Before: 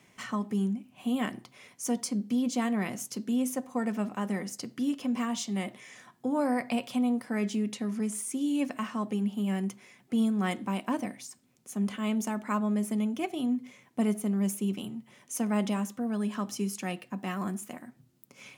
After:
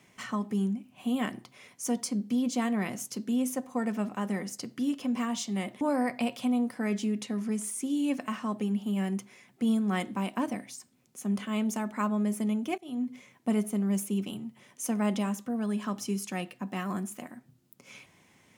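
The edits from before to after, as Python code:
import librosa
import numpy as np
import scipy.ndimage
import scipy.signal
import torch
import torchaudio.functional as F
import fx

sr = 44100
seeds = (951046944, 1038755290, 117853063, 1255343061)

y = fx.edit(x, sr, fx.cut(start_s=5.81, length_s=0.51),
    fx.fade_in_from(start_s=13.29, length_s=0.33, floor_db=-22.0), tone=tone)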